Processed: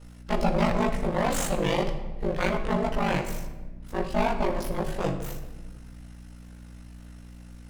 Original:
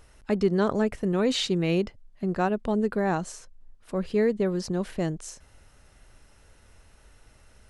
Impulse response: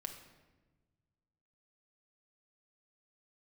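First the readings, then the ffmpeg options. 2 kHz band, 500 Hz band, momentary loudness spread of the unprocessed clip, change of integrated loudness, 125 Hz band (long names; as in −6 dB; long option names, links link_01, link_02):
+3.0 dB, −2.0 dB, 10 LU, −1.5 dB, 0.0 dB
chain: -filter_complex "[0:a]aeval=exprs='abs(val(0))':channel_layout=same,aeval=exprs='val(0)*sin(2*PI*25*n/s)':channel_layout=same,aeval=exprs='val(0)+0.00224*(sin(2*PI*60*n/s)+sin(2*PI*2*60*n/s)/2+sin(2*PI*3*60*n/s)/3+sin(2*PI*4*60*n/s)/4+sin(2*PI*5*60*n/s)/5)':channel_layout=same,asplit=2[link_01][link_02];[1:a]atrim=start_sample=2205,asetrate=43218,aresample=44100,adelay=17[link_03];[link_02][link_03]afir=irnorm=-1:irlink=0,volume=5dB[link_04];[link_01][link_04]amix=inputs=2:normalize=0,volume=1.5dB"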